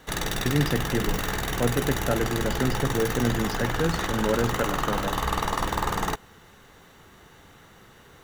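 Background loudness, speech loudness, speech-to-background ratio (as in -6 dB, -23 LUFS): -28.5 LUFS, -28.5 LUFS, 0.0 dB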